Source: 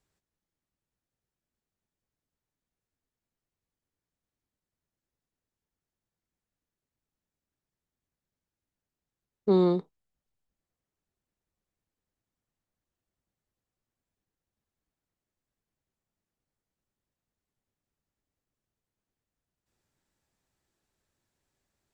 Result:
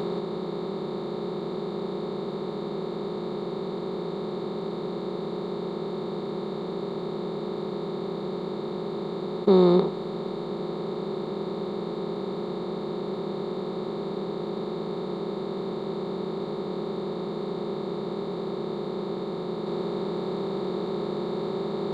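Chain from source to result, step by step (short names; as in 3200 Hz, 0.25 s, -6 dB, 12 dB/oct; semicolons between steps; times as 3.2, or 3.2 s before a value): per-bin compression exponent 0.2; gain +2.5 dB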